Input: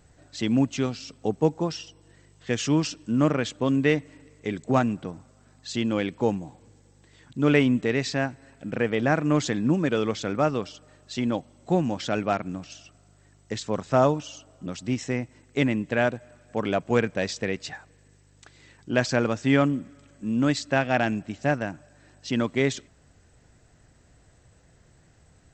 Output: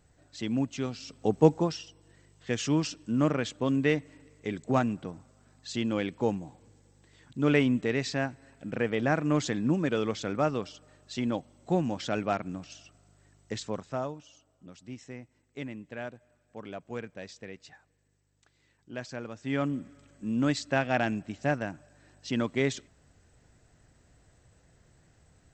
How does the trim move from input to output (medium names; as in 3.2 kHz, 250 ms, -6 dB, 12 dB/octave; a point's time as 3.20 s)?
0.79 s -7 dB
1.50 s +2.5 dB
1.79 s -4 dB
13.63 s -4 dB
14.08 s -15.5 dB
19.31 s -15.5 dB
19.80 s -4 dB